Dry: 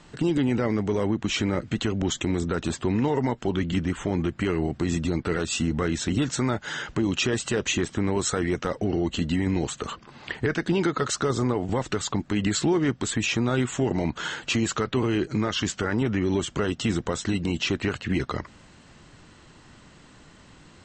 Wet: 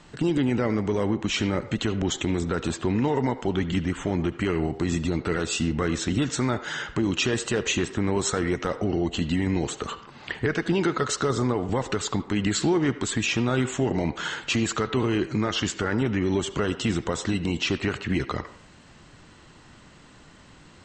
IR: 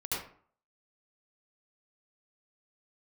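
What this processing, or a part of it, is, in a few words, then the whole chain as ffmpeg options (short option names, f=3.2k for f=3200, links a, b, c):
filtered reverb send: -filter_complex "[0:a]asplit=2[a][b];[b]highpass=390,lowpass=4.9k[c];[1:a]atrim=start_sample=2205[d];[c][d]afir=irnorm=-1:irlink=0,volume=-16dB[e];[a][e]amix=inputs=2:normalize=0"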